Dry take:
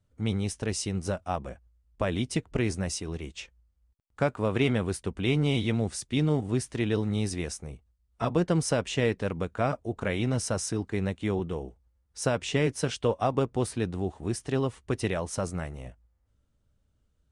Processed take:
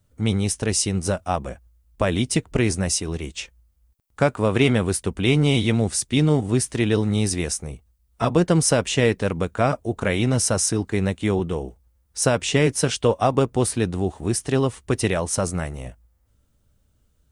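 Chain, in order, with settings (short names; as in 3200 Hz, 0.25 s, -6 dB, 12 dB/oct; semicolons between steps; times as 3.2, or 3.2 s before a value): high shelf 8600 Hz +12 dB; gain +7 dB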